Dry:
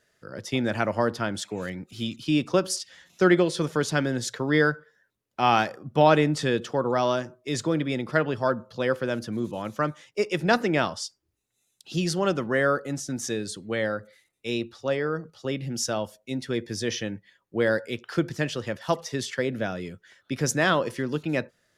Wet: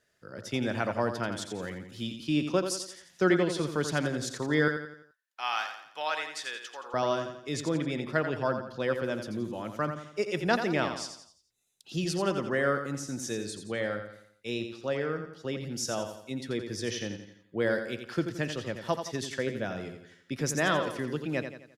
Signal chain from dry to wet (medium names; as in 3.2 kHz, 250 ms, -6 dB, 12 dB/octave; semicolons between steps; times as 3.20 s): 4.68–6.94 s: high-pass 1.3 kHz 12 dB/octave; feedback delay 86 ms, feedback 44%, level -8 dB; trim -5 dB